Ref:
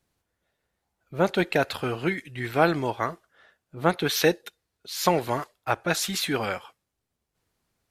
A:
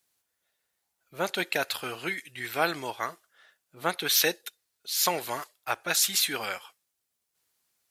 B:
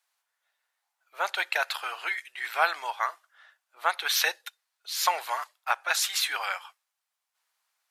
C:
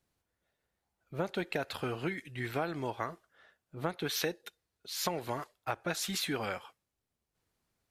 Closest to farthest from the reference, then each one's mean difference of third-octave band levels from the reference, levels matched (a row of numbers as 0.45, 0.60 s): C, A, B; 3.0, 6.0, 11.0 dB